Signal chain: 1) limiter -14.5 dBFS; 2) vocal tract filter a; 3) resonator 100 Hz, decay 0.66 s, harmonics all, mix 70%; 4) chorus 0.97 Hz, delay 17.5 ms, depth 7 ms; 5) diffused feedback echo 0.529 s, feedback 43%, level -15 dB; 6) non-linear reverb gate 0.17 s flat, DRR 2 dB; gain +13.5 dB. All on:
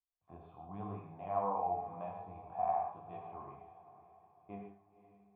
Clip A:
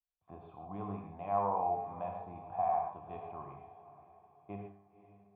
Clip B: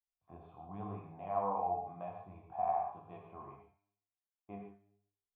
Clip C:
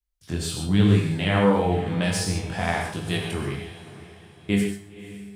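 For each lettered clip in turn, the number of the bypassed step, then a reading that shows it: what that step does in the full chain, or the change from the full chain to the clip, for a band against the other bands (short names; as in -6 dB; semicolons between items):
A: 4, loudness change +2.5 LU; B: 5, momentary loudness spread change -2 LU; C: 2, 1 kHz band -21.5 dB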